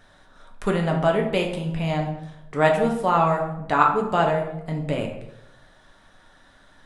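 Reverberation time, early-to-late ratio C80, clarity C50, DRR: 0.90 s, 9.5 dB, 6.5 dB, 0.5 dB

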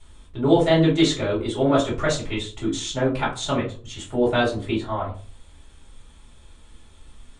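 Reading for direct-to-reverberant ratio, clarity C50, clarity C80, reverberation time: −7.0 dB, 8.5 dB, 15.0 dB, 0.40 s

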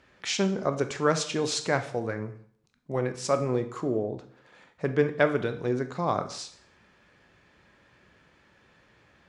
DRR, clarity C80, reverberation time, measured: 8.0 dB, 16.0 dB, 0.60 s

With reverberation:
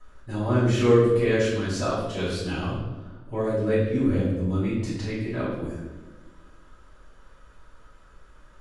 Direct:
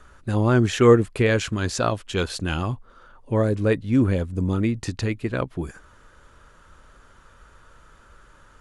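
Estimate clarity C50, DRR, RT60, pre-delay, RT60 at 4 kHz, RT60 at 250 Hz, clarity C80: 0.5 dB, −10.0 dB, 1.2 s, 4 ms, 0.90 s, 1.9 s, 3.5 dB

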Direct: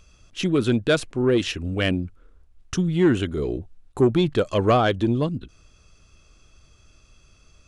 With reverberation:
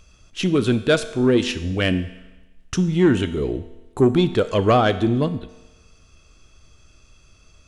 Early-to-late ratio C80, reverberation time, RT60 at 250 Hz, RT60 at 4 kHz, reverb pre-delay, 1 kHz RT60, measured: 15.0 dB, 1.1 s, 1.1 s, 1.1 s, 4 ms, 1.1 s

